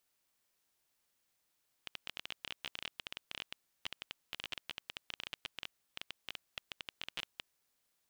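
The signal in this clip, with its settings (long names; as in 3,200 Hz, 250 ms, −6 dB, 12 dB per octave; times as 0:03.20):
Geiger counter clicks 15 per second −23 dBFS 5.64 s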